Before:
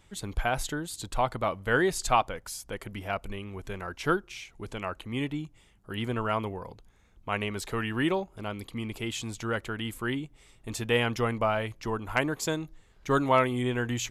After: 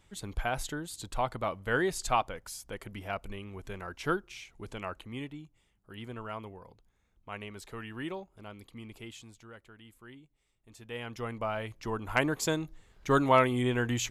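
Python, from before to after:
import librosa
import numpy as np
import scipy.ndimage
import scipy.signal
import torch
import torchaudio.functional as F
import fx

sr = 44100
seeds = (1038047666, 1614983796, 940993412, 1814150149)

y = fx.gain(x, sr, db=fx.line((4.95, -4.0), (5.36, -11.0), (9.02, -11.0), (9.52, -20.0), (10.69, -20.0), (11.25, -9.0), (12.25, 0.0)))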